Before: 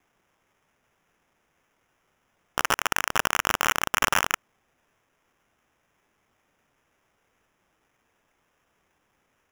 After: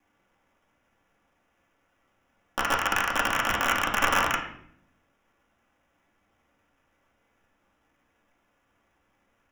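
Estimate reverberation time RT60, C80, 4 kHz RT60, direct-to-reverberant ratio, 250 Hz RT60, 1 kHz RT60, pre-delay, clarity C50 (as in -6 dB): 0.70 s, 10.0 dB, 0.55 s, -4.5 dB, 1.1 s, 0.60 s, 3 ms, 7.0 dB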